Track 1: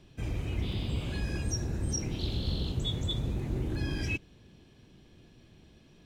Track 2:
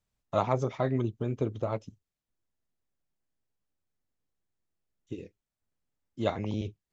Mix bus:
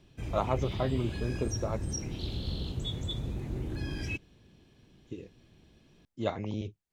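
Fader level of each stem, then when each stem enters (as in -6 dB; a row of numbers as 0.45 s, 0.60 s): -3.0 dB, -2.5 dB; 0.00 s, 0.00 s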